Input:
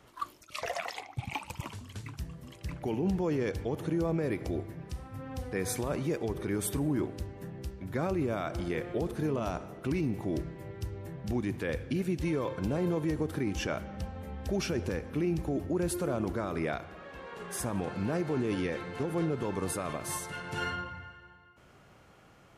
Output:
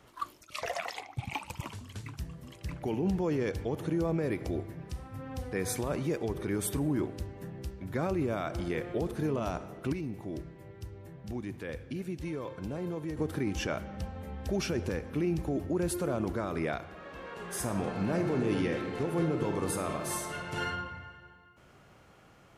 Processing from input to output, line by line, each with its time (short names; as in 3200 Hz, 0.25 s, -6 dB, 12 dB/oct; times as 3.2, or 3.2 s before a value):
9.93–13.17 gain -6 dB
16.92–20.54 reverb throw, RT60 1.9 s, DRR 4.5 dB